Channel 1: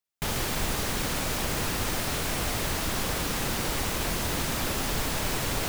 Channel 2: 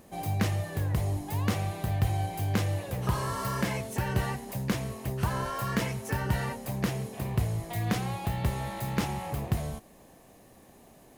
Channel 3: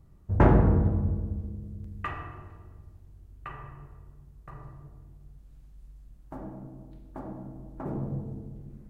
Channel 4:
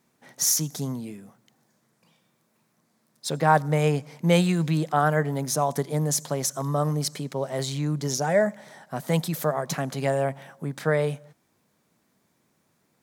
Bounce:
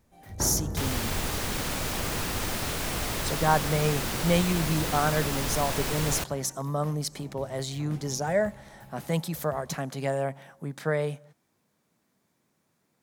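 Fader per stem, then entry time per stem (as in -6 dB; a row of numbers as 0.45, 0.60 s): -1.5, -18.0, -12.0, -4.0 dB; 0.55, 0.00, 0.00, 0.00 s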